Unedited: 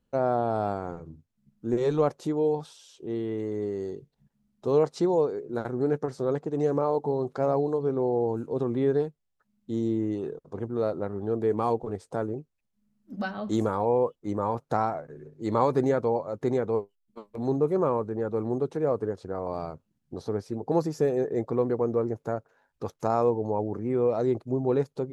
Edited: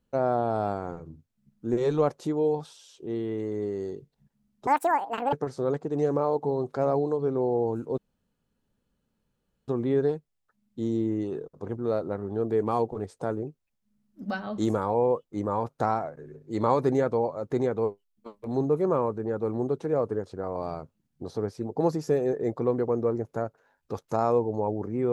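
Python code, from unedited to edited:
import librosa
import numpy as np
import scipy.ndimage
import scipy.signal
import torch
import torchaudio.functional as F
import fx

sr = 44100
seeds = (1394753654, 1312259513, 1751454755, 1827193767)

y = fx.edit(x, sr, fx.speed_span(start_s=4.67, length_s=1.27, speed=1.93),
    fx.insert_room_tone(at_s=8.59, length_s=1.7), tone=tone)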